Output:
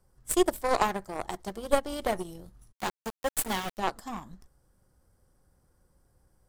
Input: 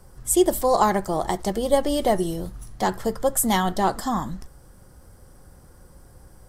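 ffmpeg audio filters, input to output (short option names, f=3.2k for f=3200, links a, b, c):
-filter_complex "[0:a]aeval=exprs='0.562*(cos(1*acos(clip(val(0)/0.562,-1,1)))-cos(1*PI/2))+0.178*(cos(2*acos(clip(val(0)/0.562,-1,1)))-cos(2*PI/2))+0.0316*(cos(3*acos(clip(val(0)/0.562,-1,1)))-cos(3*PI/2))+0.0224*(cos(5*acos(clip(val(0)/0.562,-1,1)))-cos(5*PI/2))+0.0631*(cos(7*acos(clip(val(0)/0.562,-1,1)))-cos(7*PI/2))':c=same,asplit=3[a][b][c];[a]afade=t=out:st=2.71:d=0.02[d];[b]aeval=exprs='val(0)*gte(abs(val(0)),0.0447)':c=same,afade=t=in:st=2.71:d=0.02,afade=t=out:st=3.77:d=0.02[e];[c]afade=t=in:st=3.77:d=0.02[f];[d][e][f]amix=inputs=3:normalize=0,volume=-5.5dB"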